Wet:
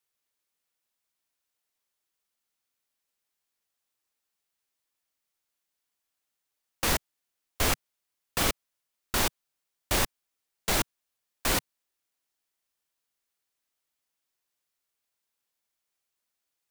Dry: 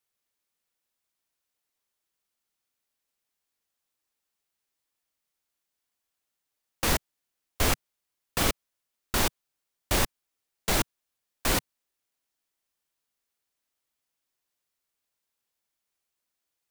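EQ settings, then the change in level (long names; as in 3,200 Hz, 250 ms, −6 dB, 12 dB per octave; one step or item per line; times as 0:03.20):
low-shelf EQ 480 Hz −3 dB
0.0 dB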